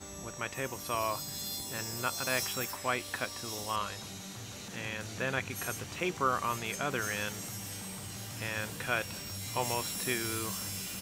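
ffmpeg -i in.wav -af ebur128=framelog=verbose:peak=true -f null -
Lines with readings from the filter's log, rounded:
Integrated loudness:
  I:         -34.6 LUFS
  Threshold: -44.6 LUFS
Loudness range:
  LRA:         1.9 LU
  Threshold: -54.7 LUFS
  LRA low:   -35.9 LUFS
  LRA high:  -34.0 LUFS
True peak:
  Peak:      -14.3 dBFS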